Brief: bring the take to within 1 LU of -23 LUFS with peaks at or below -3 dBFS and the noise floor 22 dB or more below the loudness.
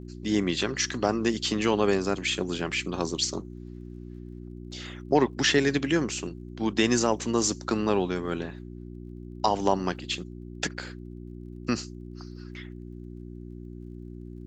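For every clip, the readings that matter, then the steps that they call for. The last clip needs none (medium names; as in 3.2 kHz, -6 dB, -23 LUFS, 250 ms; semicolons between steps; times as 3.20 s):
tick rate 21 per s; hum 60 Hz; highest harmonic 360 Hz; hum level -38 dBFS; loudness -27.0 LUFS; peak level -8.5 dBFS; loudness target -23.0 LUFS
-> de-click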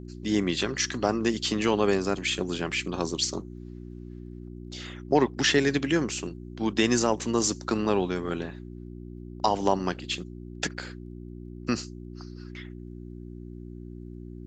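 tick rate 0 per s; hum 60 Hz; highest harmonic 360 Hz; hum level -38 dBFS
-> de-hum 60 Hz, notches 6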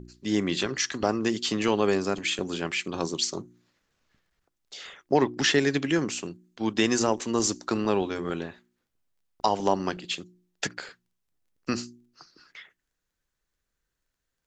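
hum not found; loudness -27.0 LUFS; peak level -8.5 dBFS; loudness target -23.0 LUFS
-> trim +4 dB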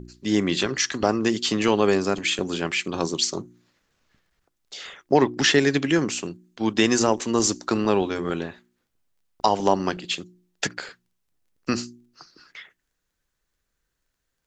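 loudness -23.0 LUFS; peak level -4.5 dBFS; noise floor -78 dBFS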